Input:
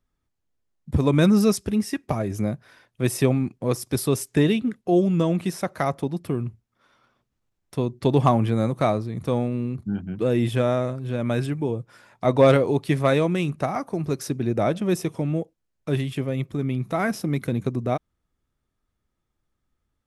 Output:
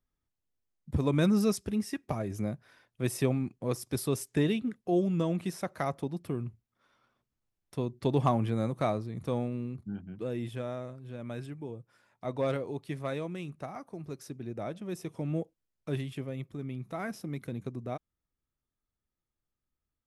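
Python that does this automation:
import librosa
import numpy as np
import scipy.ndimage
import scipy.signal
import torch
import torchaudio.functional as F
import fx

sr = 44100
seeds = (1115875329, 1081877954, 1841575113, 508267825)

y = fx.gain(x, sr, db=fx.line((9.44, -8.0), (10.6, -15.0), (14.91, -15.0), (15.4, -6.0), (16.52, -12.5)))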